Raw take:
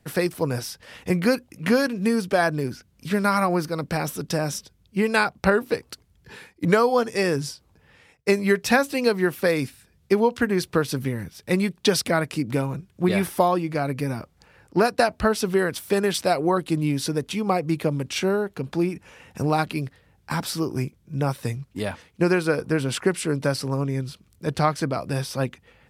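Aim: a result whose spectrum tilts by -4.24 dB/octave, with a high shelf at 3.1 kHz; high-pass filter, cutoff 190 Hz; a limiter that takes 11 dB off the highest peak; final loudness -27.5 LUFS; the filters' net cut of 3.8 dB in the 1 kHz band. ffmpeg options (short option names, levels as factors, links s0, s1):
-af "highpass=190,equalizer=f=1000:t=o:g=-6,highshelf=f=3100:g=3.5,volume=1.12,alimiter=limit=0.178:level=0:latency=1"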